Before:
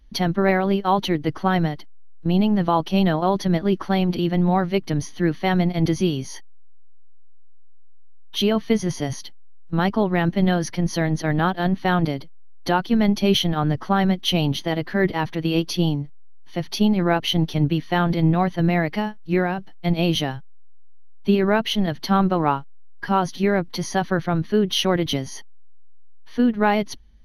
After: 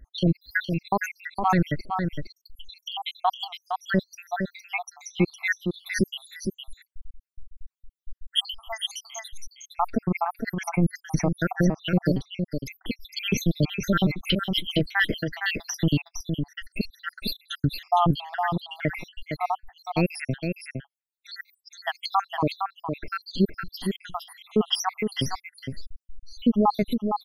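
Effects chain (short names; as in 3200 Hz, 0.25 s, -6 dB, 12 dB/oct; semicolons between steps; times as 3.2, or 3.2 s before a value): random spectral dropouts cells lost 84%; limiter -17.5 dBFS, peak gain reduction 11 dB; on a send: echo 0.461 s -6 dB; on the sum: gain +6 dB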